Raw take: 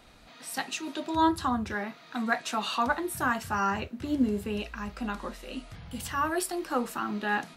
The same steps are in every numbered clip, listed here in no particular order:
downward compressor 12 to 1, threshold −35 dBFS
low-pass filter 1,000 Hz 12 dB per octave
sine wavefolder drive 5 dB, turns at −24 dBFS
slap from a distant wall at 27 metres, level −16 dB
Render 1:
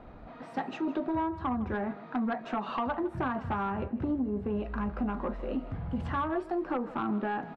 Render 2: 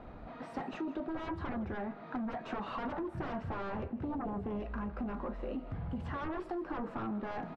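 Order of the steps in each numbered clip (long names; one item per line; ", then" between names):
low-pass filter, then downward compressor, then sine wavefolder, then slap from a distant wall
sine wavefolder, then low-pass filter, then downward compressor, then slap from a distant wall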